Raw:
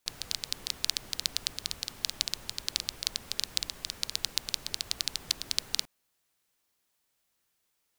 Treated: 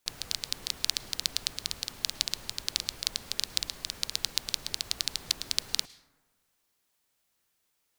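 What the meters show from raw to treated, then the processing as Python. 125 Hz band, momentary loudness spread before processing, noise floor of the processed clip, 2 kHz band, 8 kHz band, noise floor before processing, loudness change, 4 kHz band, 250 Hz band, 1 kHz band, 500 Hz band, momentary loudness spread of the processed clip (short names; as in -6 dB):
+1.0 dB, 4 LU, -76 dBFS, +1.0 dB, +1.0 dB, -77 dBFS, +1.0 dB, +1.0 dB, +1.0 dB, +1.0 dB, +1.0 dB, 4 LU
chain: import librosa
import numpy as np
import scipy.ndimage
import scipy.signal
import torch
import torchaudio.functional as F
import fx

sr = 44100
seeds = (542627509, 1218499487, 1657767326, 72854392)

y = fx.rev_plate(x, sr, seeds[0], rt60_s=1.5, hf_ratio=0.3, predelay_ms=95, drr_db=18.5)
y = y * 10.0 ** (1.0 / 20.0)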